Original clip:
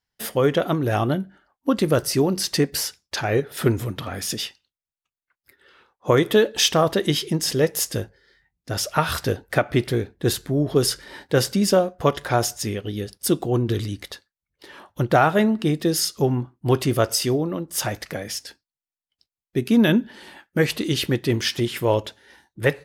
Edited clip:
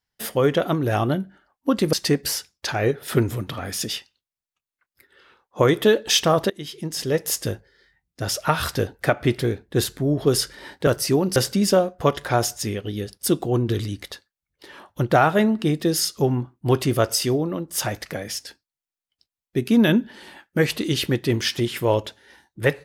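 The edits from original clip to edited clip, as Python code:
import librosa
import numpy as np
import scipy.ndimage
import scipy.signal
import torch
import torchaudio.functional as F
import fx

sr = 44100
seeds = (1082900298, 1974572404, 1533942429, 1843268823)

y = fx.edit(x, sr, fx.move(start_s=1.93, length_s=0.49, to_s=11.36),
    fx.fade_in_from(start_s=6.99, length_s=0.87, floor_db=-21.5), tone=tone)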